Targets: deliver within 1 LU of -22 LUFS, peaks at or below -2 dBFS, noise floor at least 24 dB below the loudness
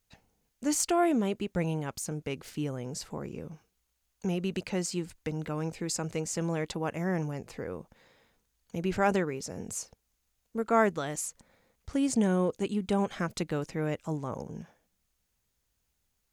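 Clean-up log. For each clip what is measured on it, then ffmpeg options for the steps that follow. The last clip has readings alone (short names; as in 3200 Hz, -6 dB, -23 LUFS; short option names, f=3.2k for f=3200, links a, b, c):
loudness -32.0 LUFS; peak -12.5 dBFS; loudness target -22.0 LUFS
-> -af "volume=10dB"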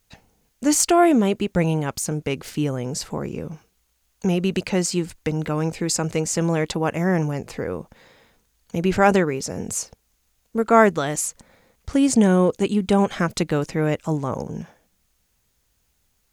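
loudness -22.0 LUFS; peak -2.5 dBFS; noise floor -68 dBFS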